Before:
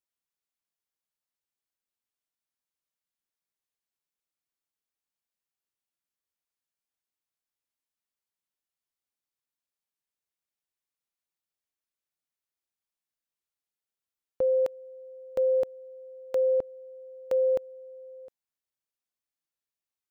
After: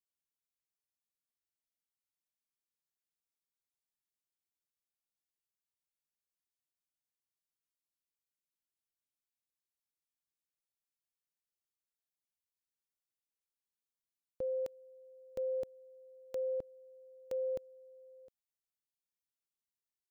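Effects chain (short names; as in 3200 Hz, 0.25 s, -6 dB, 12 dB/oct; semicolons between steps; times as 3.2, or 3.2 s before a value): bell 1000 Hz -10 dB 3 oct; gain -4.5 dB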